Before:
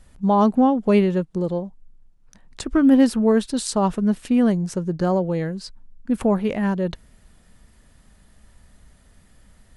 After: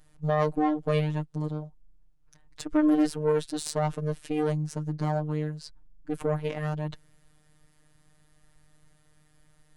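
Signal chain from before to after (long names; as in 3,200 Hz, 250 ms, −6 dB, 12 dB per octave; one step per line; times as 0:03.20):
harmonic generator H 4 −17 dB, 8 −36 dB, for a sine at −4.5 dBFS
phases set to zero 152 Hz
level −5 dB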